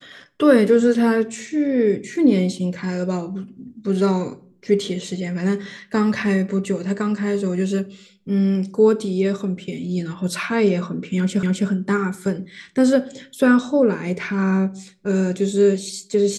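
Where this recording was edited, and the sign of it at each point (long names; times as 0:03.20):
0:11.43: the same again, the last 0.26 s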